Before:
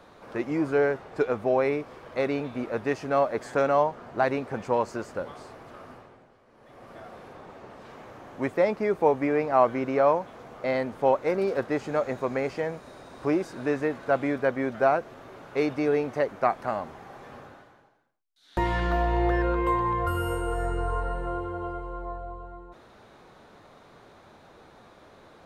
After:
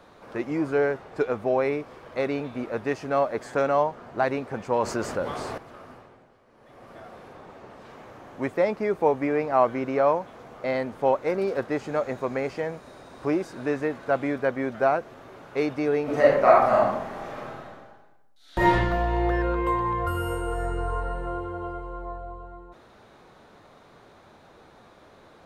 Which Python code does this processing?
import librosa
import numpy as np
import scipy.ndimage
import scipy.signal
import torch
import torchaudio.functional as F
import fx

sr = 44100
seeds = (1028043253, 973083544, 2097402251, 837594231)

y = fx.env_flatten(x, sr, amount_pct=50, at=(4.72, 5.58))
y = fx.reverb_throw(y, sr, start_s=16.03, length_s=2.69, rt60_s=0.81, drr_db=-7.5)